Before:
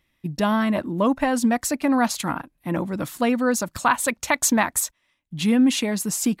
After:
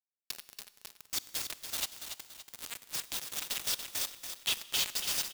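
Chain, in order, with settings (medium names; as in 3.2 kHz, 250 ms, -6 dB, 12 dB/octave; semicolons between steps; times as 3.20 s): recorder AGC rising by 42 dB/s; low-pass 7.5 kHz 12 dB/octave; band-stop 4.1 kHz, Q 9; spectral gate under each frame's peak -10 dB weak; treble shelf 5 kHz -10 dB; compression 20:1, threshold -31 dBFS, peak gain reduction 11 dB; power-law waveshaper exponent 0.35; ladder high-pass 2.6 kHz, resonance 40%; bit crusher 5-bit; tempo 1.2×; feedback delay 284 ms, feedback 42%, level -8 dB; Schroeder reverb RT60 1.6 s, combs from 26 ms, DRR 16.5 dB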